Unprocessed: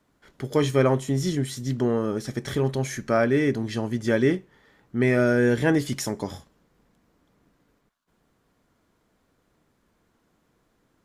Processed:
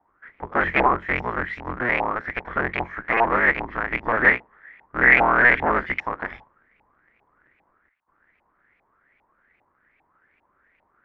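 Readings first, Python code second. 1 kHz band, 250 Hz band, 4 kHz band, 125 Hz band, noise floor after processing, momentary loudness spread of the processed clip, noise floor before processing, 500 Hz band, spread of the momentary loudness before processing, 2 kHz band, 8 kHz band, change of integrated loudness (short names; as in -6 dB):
+12.0 dB, -7.5 dB, -4.5 dB, -11.0 dB, -68 dBFS, 14 LU, -69 dBFS, -3.5 dB, 10 LU, +13.0 dB, under -30 dB, +3.5 dB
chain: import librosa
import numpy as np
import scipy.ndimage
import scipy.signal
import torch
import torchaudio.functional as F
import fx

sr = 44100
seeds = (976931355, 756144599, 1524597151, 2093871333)

y = fx.cycle_switch(x, sr, every=3, mode='inverted')
y = fx.filter_lfo_lowpass(y, sr, shape='saw_up', hz=2.5, low_hz=810.0, high_hz=2600.0, q=7.1)
y = fx.graphic_eq(y, sr, hz=(125, 2000, 8000), db=(-5, 10, -8))
y = y * 10.0 ** (-5.5 / 20.0)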